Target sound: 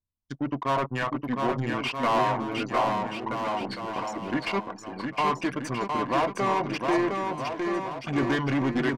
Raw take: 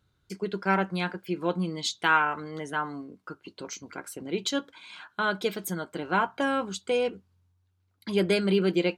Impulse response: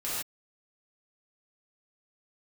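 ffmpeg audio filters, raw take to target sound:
-filter_complex "[0:a]aeval=exprs='if(lt(val(0),0),0.447*val(0),val(0))':c=same,anlmdn=0.398,highshelf=f=6500:t=q:w=1.5:g=7.5,acrossover=split=4100[s0][s1];[s1]acompressor=threshold=0.00355:ratio=4:attack=1:release=60[s2];[s0][s2]amix=inputs=2:normalize=0,asetrate=31183,aresample=44100,atempo=1.41421,asplit=2[s3][s4];[s4]highpass=f=720:p=1,volume=28.2,asoftclip=type=tanh:threshold=0.355[s5];[s3][s5]amix=inputs=2:normalize=0,lowpass=f=2300:p=1,volume=0.501,asplit=2[s6][s7];[s7]aecho=0:1:710|1278|1732|2096|2387:0.631|0.398|0.251|0.158|0.1[s8];[s6][s8]amix=inputs=2:normalize=0,volume=0.447"

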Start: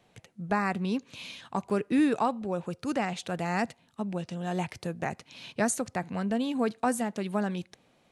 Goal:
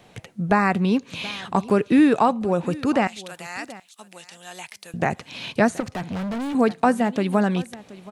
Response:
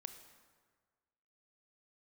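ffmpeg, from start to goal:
-filter_complex "[0:a]asettb=1/sr,asplit=3[s0][s1][s2];[s0]atrim=end=3.074[s3];[s1]atrim=start=3.07:end=4.94,asetpts=PTS-STARTPTS,afade=t=in:d=0.004:c=qsin,afade=t=out:st=1.866:d=0.004:c=qsin,aderivative[s4];[s2]atrim=start=4.936[s5];[s3][s4]acrossfade=d=0.004:c1=hsin:c2=qsin[s6];[s6][s5]acrossfade=d=0.004:c1=qsin:c2=hsin,asplit=2[s7][s8];[s8]acompressor=threshold=0.0158:ratio=6,volume=0.944[s9];[s7][s9]amix=inputs=2:normalize=0,aecho=1:1:726:0.106,asettb=1/sr,asplit=3[s10][s11][s12];[s10]atrim=end=5.804[s13];[s11]atrim=start=5.8:end=6.55,asetpts=PTS-STARTPTS,afade=t=in:d=0.004:c=qsin,afade=t=out:st=0.746:d=0.004:c=qsin,asoftclip=type=hard:threshold=0.0224[s14];[s12]atrim=start=6.546[s15];[s13][s14]acrossfade=d=0.004:c1=hsin:c2=qsin[s16];[s16][s15]acrossfade=d=0.004:c1=qsin:c2=hsin,acrossover=split=3700[s17][s18];[s18]acompressor=threshold=0.00398:ratio=4:attack=1:release=60[s19];[s17][s19]amix=inputs=2:normalize=0,volume=2.24"

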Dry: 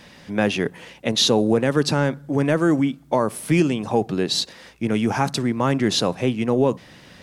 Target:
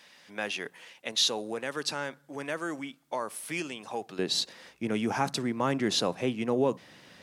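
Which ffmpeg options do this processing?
-af "asetnsamples=n=441:p=0,asendcmd='4.19 highpass f 220',highpass=f=1300:p=1,volume=0.501"

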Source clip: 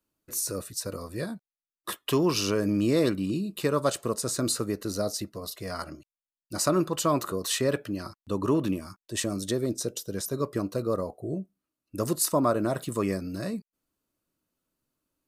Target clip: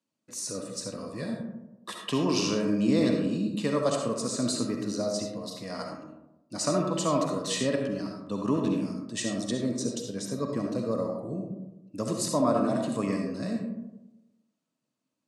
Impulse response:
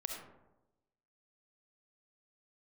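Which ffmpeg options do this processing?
-filter_complex "[0:a]highpass=f=120:w=0.5412,highpass=f=120:w=1.3066,equalizer=f=240:t=q:w=4:g=6,equalizer=f=370:t=q:w=4:g=-7,equalizer=f=1400:t=q:w=4:g=-6,lowpass=f=8400:w=0.5412,lowpass=f=8400:w=1.3066[s0];[1:a]atrim=start_sample=2205[s1];[s0][s1]afir=irnorm=-1:irlink=0"

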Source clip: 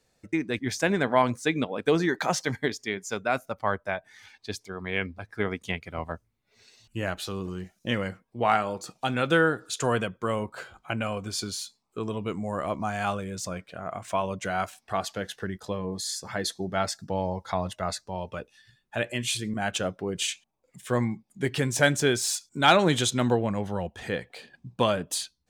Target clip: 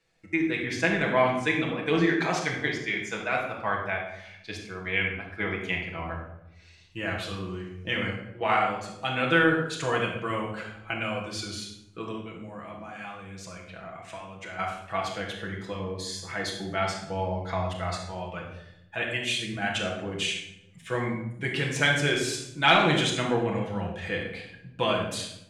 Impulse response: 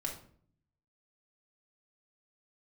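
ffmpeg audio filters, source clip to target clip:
-filter_complex "[0:a]highshelf=f=7600:g=-7.5,asettb=1/sr,asplit=3[s0][s1][s2];[s0]atrim=end=12.124[s3];[s1]atrim=start=12.12:end=14.59,asetpts=PTS-STARTPTS,afade=t=in:d=0.004:c=qsin,afade=t=out:st=2.466:d=0.004:c=qsin,acompressor=threshold=0.0141:ratio=5[s4];[s2]atrim=start=14.586[s5];[s3][s4]acrossfade=d=0.004:c1=hsin:c2=qsin[s6];[s6][s5]acrossfade=d=0.004:c1=qsin:c2=hsin,equalizer=f=2300:t=o:w=1.3:g=9.5[s7];[1:a]atrim=start_sample=2205,asetrate=24696,aresample=44100[s8];[s7][s8]afir=irnorm=-1:irlink=0,volume=0.422"

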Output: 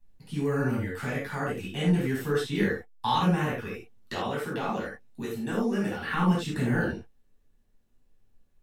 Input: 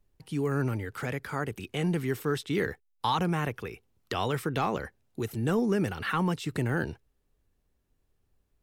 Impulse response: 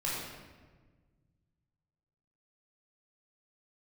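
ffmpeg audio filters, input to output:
-filter_complex "[0:a]asettb=1/sr,asplit=3[s0][s1][s2];[s0]atrim=end=4.124[s3];[s1]atrim=start=4.12:end=6.12,asetpts=PTS-STARTPTS,afade=t=in:d=0.004:c=qsin,afade=t=out:st=1.996:d=0.004:c=qsin,acrossover=split=170|410|2000[s4][s5][s6][s7];[s4]acompressor=threshold=0.00447:ratio=4[s8];[s5]acompressor=threshold=0.0126:ratio=4[s9];[s6]acompressor=threshold=0.0282:ratio=4[s10];[s7]acompressor=threshold=0.00562:ratio=4[s11];[s8][s9][s10][s11]amix=inputs=4:normalize=0[s12];[s2]atrim=start=6.116[s13];[s3][s12]acrossfade=d=0.004:c1=hsin:c2=qsin[s14];[s14][s13]acrossfade=d=0.004:c1=qsin:c2=hsin[s15];[1:a]atrim=start_sample=2205,afade=t=out:st=0.21:d=0.01,atrim=end_sample=9702,asetrate=70560,aresample=44100[s16];[s15][s16]afir=irnorm=-1:irlink=0,volume=1.12"

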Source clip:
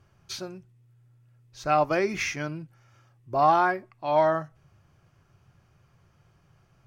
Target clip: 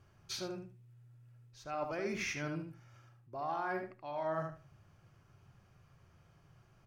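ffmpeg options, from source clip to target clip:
-filter_complex "[0:a]areverse,acompressor=threshold=0.0251:ratio=10,areverse,asplit=2[s0][s1];[s1]adelay=76,lowpass=f=3600:p=1,volume=0.562,asplit=2[s2][s3];[s3]adelay=76,lowpass=f=3600:p=1,volume=0.21,asplit=2[s4][s5];[s5]adelay=76,lowpass=f=3600:p=1,volume=0.21[s6];[s0][s2][s4][s6]amix=inputs=4:normalize=0,volume=0.668"

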